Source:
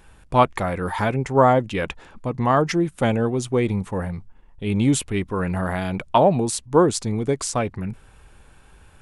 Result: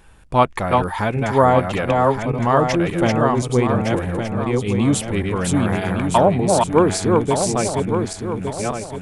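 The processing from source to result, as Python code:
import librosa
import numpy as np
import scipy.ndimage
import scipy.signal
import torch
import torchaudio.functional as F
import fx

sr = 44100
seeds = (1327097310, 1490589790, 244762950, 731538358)

y = fx.reverse_delay_fb(x, sr, ms=581, feedback_pct=58, wet_db=-2.5)
y = y * 10.0 ** (1.0 / 20.0)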